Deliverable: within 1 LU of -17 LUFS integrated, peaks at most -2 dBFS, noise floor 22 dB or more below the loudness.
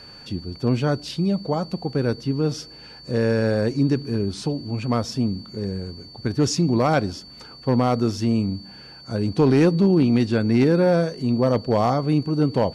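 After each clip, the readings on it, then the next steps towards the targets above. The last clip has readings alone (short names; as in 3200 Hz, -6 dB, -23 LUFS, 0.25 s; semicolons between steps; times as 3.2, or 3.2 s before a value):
clipped 0.6%; flat tops at -10.0 dBFS; steady tone 4500 Hz; tone level -42 dBFS; loudness -22.0 LUFS; peak -10.0 dBFS; loudness target -17.0 LUFS
-> clip repair -10 dBFS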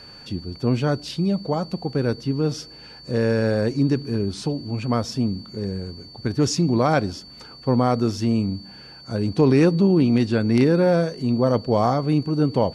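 clipped 0.0%; steady tone 4500 Hz; tone level -42 dBFS
-> notch 4500 Hz, Q 30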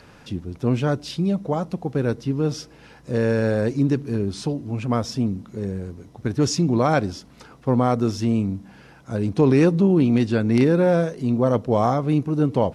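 steady tone none; loudness -22.0 LUFS; peak -4.5 dBFS; loudness target -17.0 LUFS
-> gain +5 dB; limiter -2 dBFS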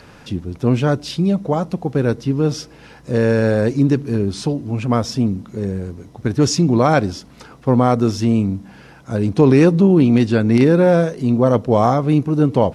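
loudness -17.0 LUFS; peak -2.0 dBFS; noise floor -44 dBFS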